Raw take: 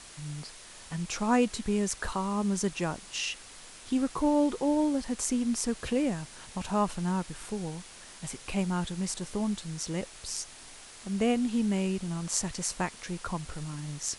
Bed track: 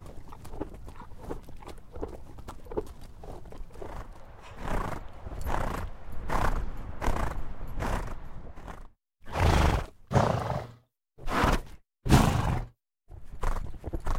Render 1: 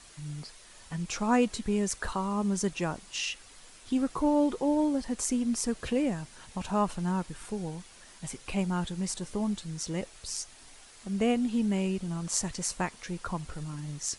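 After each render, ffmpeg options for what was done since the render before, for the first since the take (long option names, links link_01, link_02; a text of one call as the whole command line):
ffmpeg -i in.wav -af "afftdn=noise_reduction=6:noise_floor=-49" out.wav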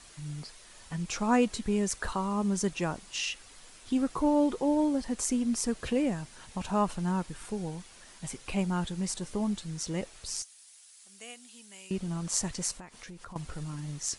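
ffmpeg -i in.wav -filter_complex "[0:a]asettb=1/sr,asplit=3[link_01][link_02][link_03];[link_01]atrim=end=10.424[link_04];[link_02]atrim=start=10.42:end=11.91,asetpts=PTS-STARTPTS,afade=type=in:duration=0.004:curve=qsin,afade=type=out:start_time=1.486:duration=0.004:curve=qsin,aderivative[link_05];[link_03]atrim=start=11.906[link_06];[link_04][link_05]acrossfade=duration=0.004:curve1=hsin:curve2=qsin[link_07];[link_07][link_06]acrossfade=duration=0.004:curve1=qsin:curve2=hsin,asettb=1/sr,asplit=3[link_08][link_09][link_10];[link_08]atrim=end=12.714[link_11];[link_09]atrim=start=12.71:end=13.36,asetpts=PTS-STARTPTS,afade=type=in:duration=0.004:curve=qsin,afade=type=out:start_time=0.646:duration=0.004:curve=qsin,acompressor=threshold=-42dB:ratio=8:attack=3.2:release=140:knee=1:detection=peak[link_12];[link_10]atrim=start=13.356[link_13];[link_11][link_12]acrossfade=duration=0.004:curve1=hsin:curve2=qsin[link_14];[link_14][link_13]acrossfade=duration=0.004:curve1=qsin:curve2=hsin" out.wav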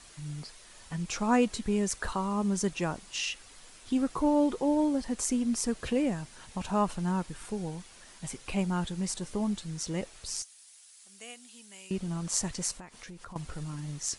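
ffmpeg -i in.wav -af anull out.wav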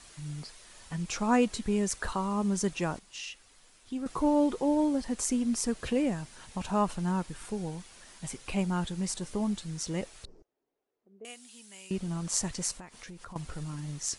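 ffmpeg -i in.wav -filter_complex "[0:a]asettb=1/sr,asplit=3[link_01][link_02][link_03];[link_01]atrim=end=10.254[link_04];[link_02]atrim=start=10.25:end=11.25,asetpts=PTS-STARTPTS,afade=type=in:duration=0.004:curve=qsin,afade=type=out:start_time=0.996:duration=0.004:curve=qsin,lowpass=frequency=410:width_type=q:width=3.1[link_05];[link_03]atrim=start=11.246[link_06];[link_04][link_05]acrossfade=duration=0.004:curve1=hsin:curve2=qsin[link_07];[link_07][link_06]acrossfade=duration=0.004:curve1=qsin:curve2=hsin,asplit=3[link_08][link_09][link_10];[link_08]atrim=end=2.992[link_11];[link_09]atrim=start=2.988:end=4.062,asetpts=PTS-STARTPTS,volume=-7.5dB[link_12];[link_10]atrim=start=4.058[link_13];[link_11][link_12]acrossfade=duration=0.004:curve1=hsin:curve2=hsin[link_14];[link_14][link_13]acrossfade=duration=0.004:curve1=hsin:curve2=hsin" out.wav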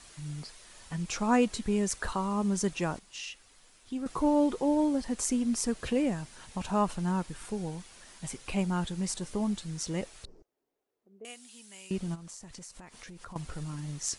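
ffmpeg -i in.wav -filter_complex "[0:a]asplit=3[link_01][link_02][link_03];[link_01]afade=type=out:start_time=12.14:duration=0.02[link_04];[link_02]acompressor=threshold=-42dB:ratio=20:attack=3.2:release=140:knee=1:detection=peak,afade=type=in:start_time=12.14:duration=0.02,afade=type=out:start_time=13.17:duration=0.02[link_05];[link_03]afade=type=in:start_time=13.17:duration=0.02[link_06];[link_04][link_05][link_06]amix=inputs=3:normalize=0" out.wav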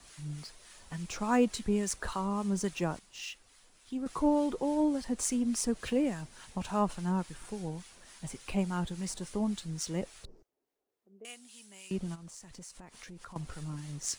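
ffmpeg -i in.wav -filter_complex "[0:a]acrossover=split=130|1900[link_01][link_02][link_03];[link_03]acrusher=bits=4:mode=log:mix=0:aa=0.000001[link_04];[link_01][link_02][link_04]amix=inputs=3:normalize=0,acrossover=split=970[link_05][link_06];[link_05]aeval=exprs='val(0)*(1-0.5/2+0.5/2*cos(2*PI*3.5*n/s))':channel_layout=same[link_07];[link_06]aeval=exprs='val(0)*(1-0.5/2-0.5/2*cos(2*PI*3.5*n/s))':channel_layout=same[link_08];[link_07][link_08]amix=inputs=2:normalize=0" out.wav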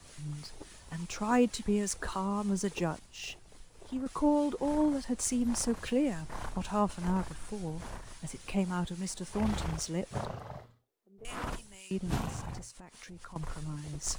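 ffmpeg -i in.wav -i bed.wav -filter_complex "[1:a]volume=-13dB[link_01];[0:a][link_01]amix=inputs=2:normalize=0" out.wav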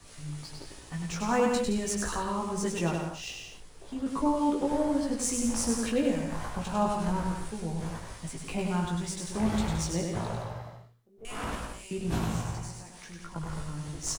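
ffmpeg -i in.wav -filter_complex "[0:a]asplit=2[link_01][link_02];[link_02]adelay=18,volume=-3.5dB[link_03];[link_01][link_03]amix=inputs=2:normalize=0,aecho=1:1:100|170|219|253.3|277.3:0.631|0.398|0.251|0.158|0.1" out.wav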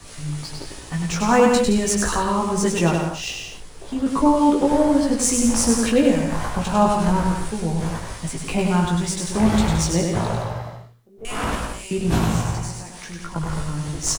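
ffmpeg -i in.wav -af "volume=10.5dB" out.wav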